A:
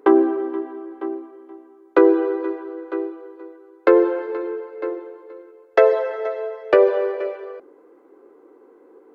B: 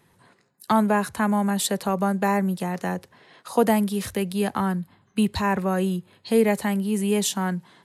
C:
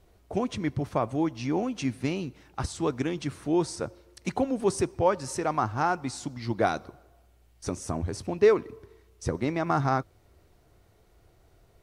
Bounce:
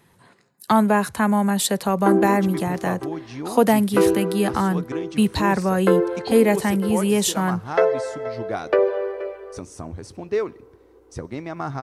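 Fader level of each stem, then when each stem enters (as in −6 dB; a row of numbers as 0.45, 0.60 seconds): −4.0, +3.0, −3.5 decibels; 2.00, 0.00, 1.90 seconds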